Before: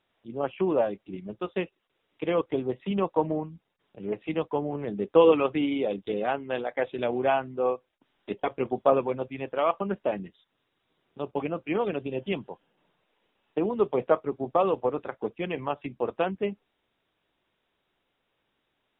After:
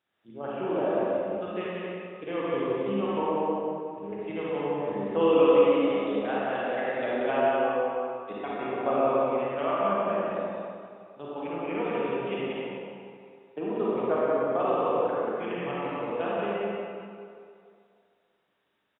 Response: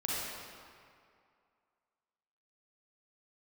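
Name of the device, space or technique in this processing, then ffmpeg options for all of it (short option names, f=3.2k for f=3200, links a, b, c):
stadium PA: -filter_complex "[0:a]highpass=f=130:p=1,equalizer=f=1.6k:t=o:w=0.41:g=4,aecho=1:1:183.7|277:0.708|0.316[a];[1:a]atrim=start_sample=2205[b];[a][b]afir=irnorm=-1:irlink=0,volume=-7.5dB"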